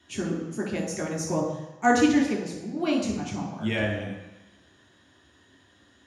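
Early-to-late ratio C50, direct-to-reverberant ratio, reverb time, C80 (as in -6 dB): 4.5 dB, -1.0 dB, 1.0 s, 7.0 dB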